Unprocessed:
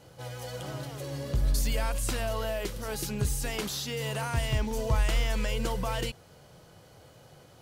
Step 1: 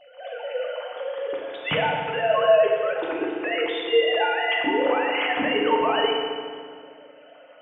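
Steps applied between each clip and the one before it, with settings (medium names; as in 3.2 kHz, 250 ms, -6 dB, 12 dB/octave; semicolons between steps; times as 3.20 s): formants replaced by sine waves; FDN reverb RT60 2 s, low-frequency decay 1.4×, high-frequency decay 0.8×, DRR -2 dB; trim +1 dB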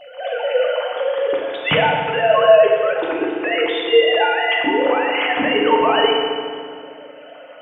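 gain riding within 5 dB 2 s; trim +6 dB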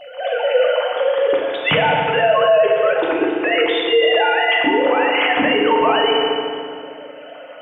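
peak limiter -9.5 dBFS, peak gain reduction 8.5 dB; trim +3 dB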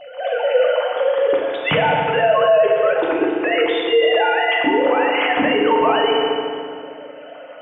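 treble shelf 3.1 kHz -7.5 dB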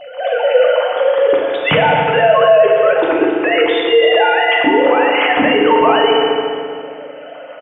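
feedback delay 269 ms, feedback 43%, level -17 dB; trim +4.5 dB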